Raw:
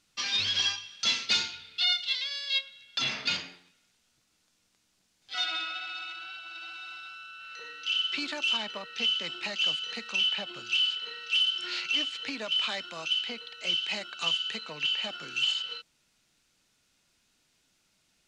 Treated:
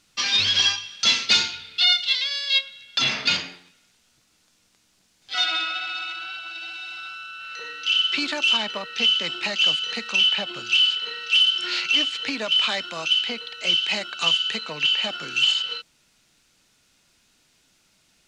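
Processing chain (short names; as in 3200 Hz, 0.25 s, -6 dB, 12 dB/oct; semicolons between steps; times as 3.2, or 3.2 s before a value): 6.51–6.98 bell 1200 Hz -15 dB 0.26 oct; gain +8 dB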